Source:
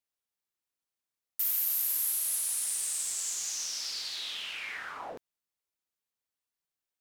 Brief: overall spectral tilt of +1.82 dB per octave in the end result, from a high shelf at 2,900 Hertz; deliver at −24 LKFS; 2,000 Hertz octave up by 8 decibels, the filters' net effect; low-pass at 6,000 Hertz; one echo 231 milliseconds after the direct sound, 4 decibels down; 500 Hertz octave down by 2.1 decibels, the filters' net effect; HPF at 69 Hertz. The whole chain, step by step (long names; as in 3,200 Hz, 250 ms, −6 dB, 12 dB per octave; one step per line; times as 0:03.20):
high-pass filter 69 Hz
low-pass filter 6,000 Hz
parametric band 500 Hz −3.5 dB
parametric band 2,000 Hz +8 dB
high-shelf EQ 2,900 Hz +5 dB
single-tap delay 231 ms −4 dB
level +6.5 dB